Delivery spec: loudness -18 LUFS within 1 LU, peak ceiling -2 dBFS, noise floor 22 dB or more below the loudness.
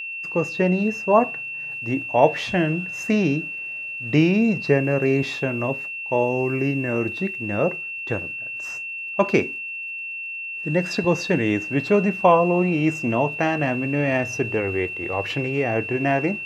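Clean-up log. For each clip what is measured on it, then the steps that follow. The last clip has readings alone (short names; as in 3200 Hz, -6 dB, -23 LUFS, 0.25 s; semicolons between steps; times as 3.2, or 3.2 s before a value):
ticks 39/s; steady tone 2700 Hz; tone level -29 dBFS; loudness -22.5 LUFS; peak -1.5 dBFS; loudness target -18.0 LUFS
-> de-click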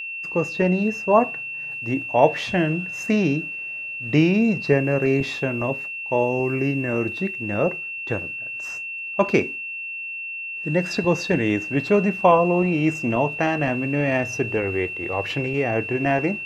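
ticks 0.061/s; steady tone 2700 Hz; tone level -29 dBFS
-> notch 2700 Hz, Q 30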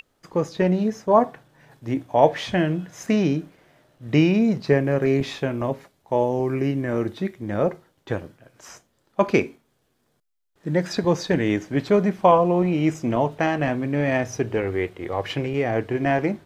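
steady tone none; loudness -22.5 LUFS; peak -2.0 dBFS; loudness target -18.0 LUFS
-> gain +4.5 dB; limiter -2 dBFS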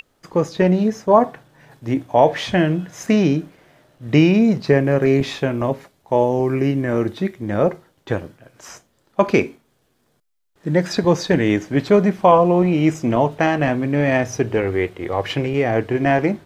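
loudness -18.5 LUFS; peak -2.0 dBFS; noise floor -64 dBFS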